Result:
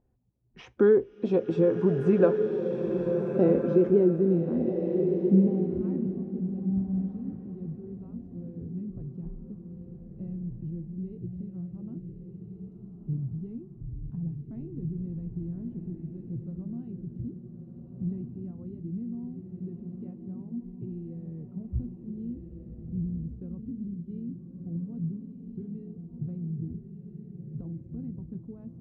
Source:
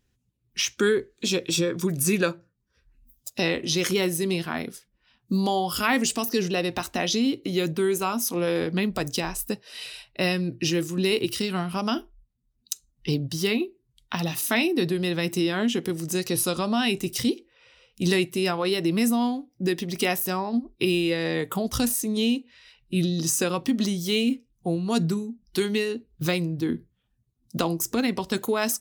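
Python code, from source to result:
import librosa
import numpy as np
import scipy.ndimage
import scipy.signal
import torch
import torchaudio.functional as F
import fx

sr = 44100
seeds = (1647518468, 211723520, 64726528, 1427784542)

y = fx.zero_step(x, sr, step_db=-32.0, at=(13.31, 15.19))
y = fx.filter_sweep_lowpass(y, sr, from_hz=730.0, to_hz=100.0, start_s=2.57, end_s=6.5, q=2.0)
y = fx.rev_bloom(y, sr, seeds[0], attack_ms=1480, drr_db=4.0)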